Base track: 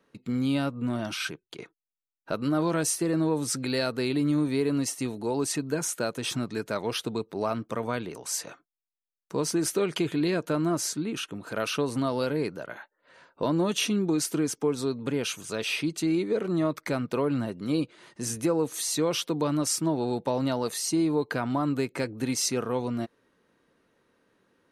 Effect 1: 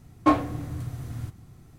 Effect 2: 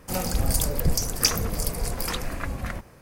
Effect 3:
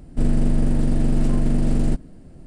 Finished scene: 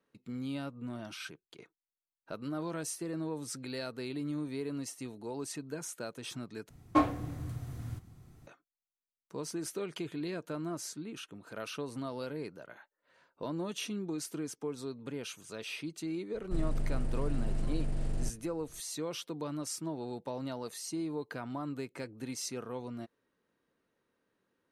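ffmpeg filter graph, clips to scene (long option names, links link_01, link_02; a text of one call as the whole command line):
ffmpeg -i bed.wav -i cue0.wav -i cue1.wav -i cue2.wav -filter_complex "[0:a]volume=-11.5dB[link_01];[3:a]equalizer=frequency=250:width_type=o:width=0.77:gain=-11[link_02];[link_01]asplit=2[link_03][link_04];[link_03]atrim=end=6.694[link_05];[1:a]atrim=end=1.78,asetpts=PTS-STARTPTS,volume=-6dB[link_06];[link_04]atrim=start=8.466[link_07];[link_02]atrim=end=2.46,asetpts=PTS-STARTPTS,volume=-13dB,afade=type=in:duration=0.004:curve=hsin,afade=type=out:start_time=2.456:duration=0.004:curve=hsin,adelay=16340[link_08];[link_05][link_06]acrossfade=duration=0.004:curve1=hsin:curve2=hsin[link_09];[link_09][link_07]acrossfade=duration=0.004:curve1=hsin:curve2=hsin[link_10];[link_10][link_08]amix=inputs=2:normalize=0" out.wav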